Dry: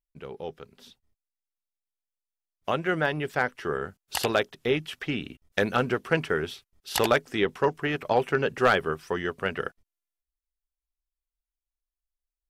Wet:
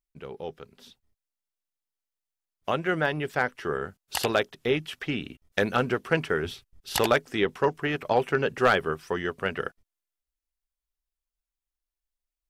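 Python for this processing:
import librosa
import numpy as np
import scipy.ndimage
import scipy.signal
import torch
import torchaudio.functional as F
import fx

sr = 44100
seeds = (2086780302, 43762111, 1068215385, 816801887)

y = fx.low_shelf(x, sr, hz=190.0, db=11.5, at=(6.45, 6.97))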